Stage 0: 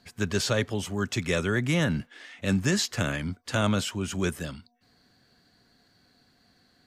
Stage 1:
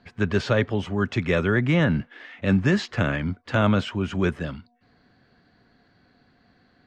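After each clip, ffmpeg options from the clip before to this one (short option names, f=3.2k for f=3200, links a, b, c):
-af "lowpass=2.5k,volume=5dB"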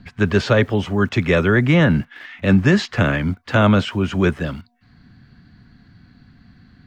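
-filter_complex "[0:a]acrossover=split=240|800|1200[a][b][c][d];[a]acompressor=mode=upward:threshold=-42dB:ratio=2.5[e];[b]aeval=exprs='val(0)*gte(abs(val(0)),0.00251)':c=same[f];[e][f][c][d]amix=inputs=4:normalize=0,volume=6dB"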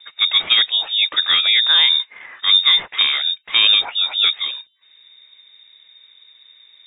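-af "lowpass=f=3.2k:t=q:w=0.5098,lowpass=f=3.2k:t=q:w=0.6013,lowpass=f=3.2k:t=q:w=0.9,lowpass=f=3.2k:t=q:w=2.563,afreqshift=-3800"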